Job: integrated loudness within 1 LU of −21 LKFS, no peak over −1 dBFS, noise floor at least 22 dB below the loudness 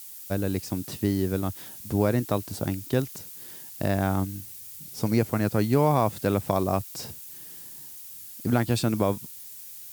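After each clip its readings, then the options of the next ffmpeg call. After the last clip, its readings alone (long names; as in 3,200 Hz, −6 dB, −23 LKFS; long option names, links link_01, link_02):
background noise floor −43 dBFS; target noise floor −49 dBFS; integrated loudness −27.0 LKFS; sample peak −7.5 dBFS; target loudness −21.0 LKFS
→ -af "afftdn=noise_reduction=6:noise_floor=-43"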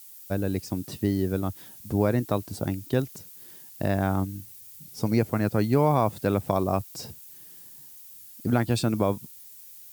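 background noise floor −47 dBFS; target noise floor −49 dBFS
→ -af "afftdn=noise_reduction=6:noise_floor=-47"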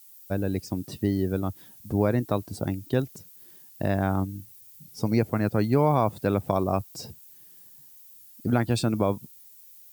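background noise floor −51 dBFS; integrated loudness −27.0 LKFS; sample peak −8.0 dBFS; target loudness −21.0 LKFS
→ -af "volume=6dB"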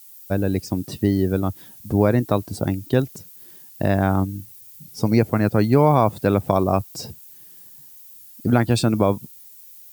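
integrated loudness −21.0 LKFS; sample peak −2.0 dBFS; background noise floor −45 dBFS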